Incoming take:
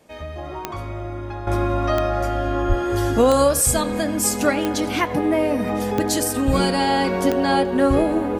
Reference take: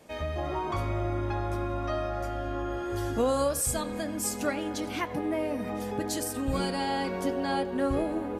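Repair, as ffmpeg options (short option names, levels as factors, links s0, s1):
-filter_complex "[0:a]adeclick=t=4,asplit=3[s0][s1][s2];[s0]afade=t=out:st=2.68:d=0.02[s3];[s1]highpass=f=140:w=0.5412,highpass=f=140:w=1.3066,afade=t=in:st=2.68:d=0.02,afade=t=out:st=2.8:d=0.02[s4];[s2]afade=t=in:st=2.8:d=0.02[s5];[s3][s4][s5]amix=inputs=3:normalize=0,asetnsamples=n=441:p=0,asendcmd='1.47 volume volume -10.5dB',volume=1"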